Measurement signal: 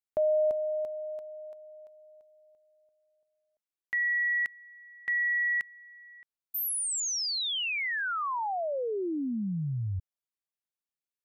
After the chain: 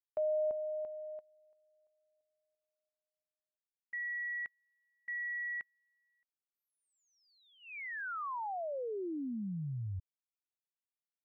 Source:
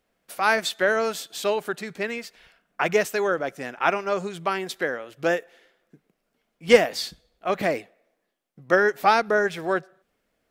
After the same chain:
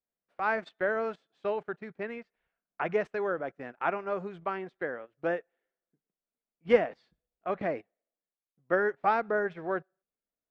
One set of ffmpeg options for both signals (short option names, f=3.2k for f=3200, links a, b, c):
-af "lowpass=1.8k,agate=range=-17dB:threshold=-40dB:ratio=16:release=76:detection=peak,volume=-7dB"